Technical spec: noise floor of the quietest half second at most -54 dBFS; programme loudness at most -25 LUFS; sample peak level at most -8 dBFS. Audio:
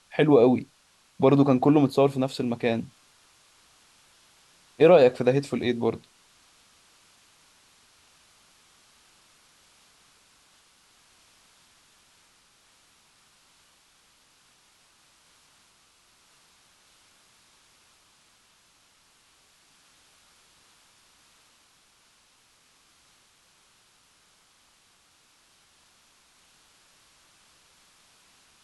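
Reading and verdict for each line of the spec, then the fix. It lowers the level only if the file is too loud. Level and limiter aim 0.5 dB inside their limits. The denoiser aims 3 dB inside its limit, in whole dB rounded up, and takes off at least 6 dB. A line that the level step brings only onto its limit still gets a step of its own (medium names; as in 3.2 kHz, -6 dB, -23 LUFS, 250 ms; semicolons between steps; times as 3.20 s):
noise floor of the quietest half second -62 dBFS: pass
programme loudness -21.5 LUFS: fail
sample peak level -6.0 dBFS: fail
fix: trim -4 dB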